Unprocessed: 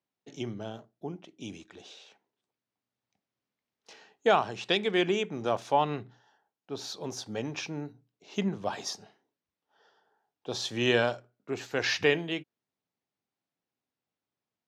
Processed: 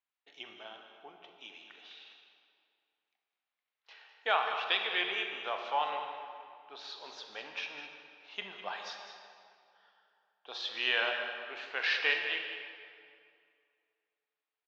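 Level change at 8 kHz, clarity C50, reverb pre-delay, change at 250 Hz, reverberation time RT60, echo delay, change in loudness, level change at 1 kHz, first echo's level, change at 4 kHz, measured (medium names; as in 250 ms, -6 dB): -16.5 dB, 4.0 dB, 24 ms, -21.0 dB, 2.3 s, 204 ms, -3.5 dB, -3.5 dB, -11.0 dB, -0.5 dB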